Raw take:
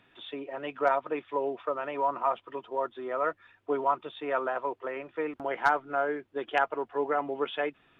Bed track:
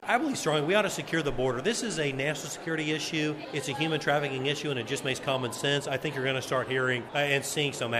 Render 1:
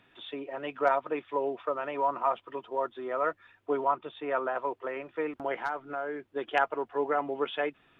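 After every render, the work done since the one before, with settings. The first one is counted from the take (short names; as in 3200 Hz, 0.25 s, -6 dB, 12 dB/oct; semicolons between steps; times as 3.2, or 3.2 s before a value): 3.85–4.55 air absorption 140 m; 5.56–6.29 compressor 2:1, threshold -34 dBFS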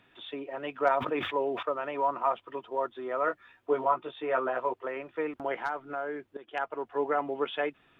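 0.97–1.63 sustainer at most 54 dB/s; 3.26–4.74 doubler 16 ms -4 dB; 6.37–6.98 fade in, from -17.5 dB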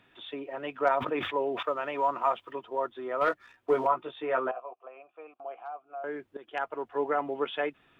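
1.59–2.53 high shelf 2600 Hz +7.5 dB; 3.21–3.87 sample leveller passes 1; 4.51–6.04 vowel filter a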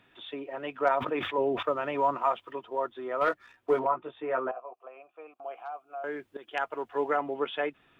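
1.38–2.17 low shelf 260 Hz +11 dB; 3.79–4.74 air absorption 360 m; 5.43–7.17 high shelf 2300 Hz +7.5 dB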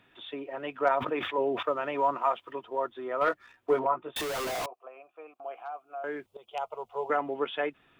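1.15–2.45 low shelf 130 Hz -9 dB; 4.16–4.66 infinite clipping; 6.26–7.1 fixed phaser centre 700 Hz, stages 4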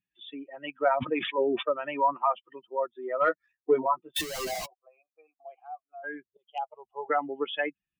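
per-bin expansion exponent 2; in parallel at +2 dB: limiter -24.5 dBFS, peak gain reduction 8.5 dB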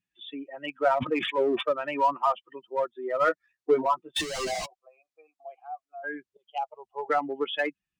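polynomial smoothing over 9 samples; in parallel at -9 dB: hard clip -29 dBFS, distortion -5 dB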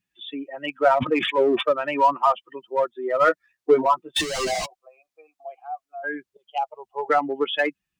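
gain +5.5 dB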